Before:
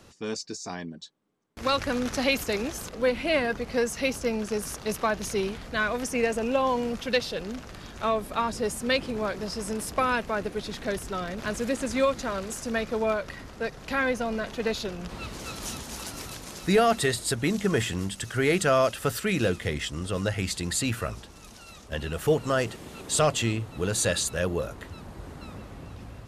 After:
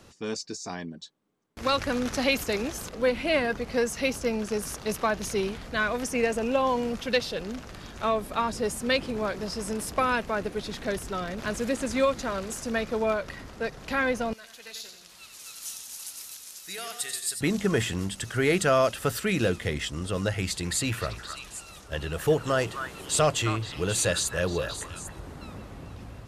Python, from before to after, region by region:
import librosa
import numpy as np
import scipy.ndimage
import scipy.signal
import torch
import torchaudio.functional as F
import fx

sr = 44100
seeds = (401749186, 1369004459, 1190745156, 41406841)

y = fx.chain(x, sr, fx.pre_emphasis(coefficient=0.97),
    fx.echo_warbled(ms=90, feedback_pct=51, rate_hz=2.8, cents=77, wet_db=-7.5), at=(14.33, 17.41))
y = fx.chain(y, sr, fx.notch(hz=230.0, q=5.4),
    fx.echo_stepped(ms=265, hz=1300.0, octaves=1.4, feedback_pct=70, wet_db=-4.0), at=(20.37, 25.2))